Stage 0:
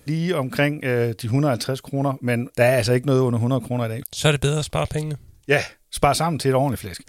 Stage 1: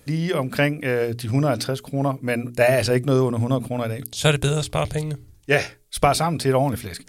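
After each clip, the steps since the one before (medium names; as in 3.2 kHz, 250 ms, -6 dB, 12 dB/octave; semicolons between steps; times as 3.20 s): hum notches 60/120/180/240/300/360/420 Hz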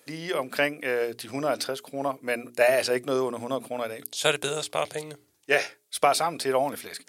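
high-pass 400 Hz 12 dB/octave; trim -2.5 dB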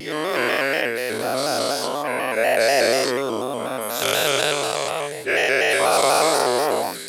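every event in the spectrogram widened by 480 ms; vibrato with a chosen wave square 4.1 Hz, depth 100 cents; trim -3 dB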